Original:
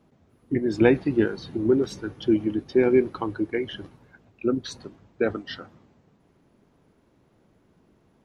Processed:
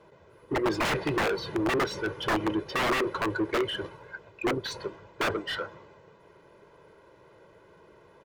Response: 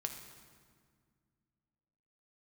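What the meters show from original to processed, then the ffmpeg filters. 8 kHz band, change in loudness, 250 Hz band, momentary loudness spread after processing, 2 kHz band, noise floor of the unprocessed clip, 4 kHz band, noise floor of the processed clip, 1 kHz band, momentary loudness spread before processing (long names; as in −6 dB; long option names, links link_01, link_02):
can't be measured, −5.0 dB, −7.5 dB, 11 LU, +4.0 dB, −63 dBFS, +6.0 dB, −57 dBFS, +7.5 dB, 16 LU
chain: -filter_complex "[0:a]aecho=1:1:2:0.81,aeval=exprs='(mod(7.94*val(0)+1,2)-1)/7.94':channel_layout=same,asplit=2[link_01][link_02];[link_02]highpass=frequency=720:poles=1,volume=20dB,asoftclip=type=tanh:threshold=-17.5dB[link_03];[link_01][link_03]amix=inputs=2:normalize=0,lowpass=frequency=1700:poles=1,volume=-6dB,volume=-2dB"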